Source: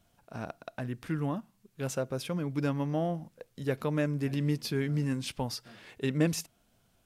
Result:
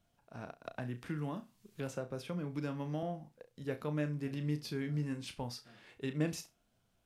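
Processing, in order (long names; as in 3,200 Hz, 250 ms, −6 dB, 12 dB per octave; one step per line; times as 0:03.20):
high-shelf EQ 9,400 Hz −6 dB
flutter between parallel walls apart 5.7 metres, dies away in 0.21 s
0:00.64–0:03.03: multiband upward and downward compressor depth 70%
level −7.5 dB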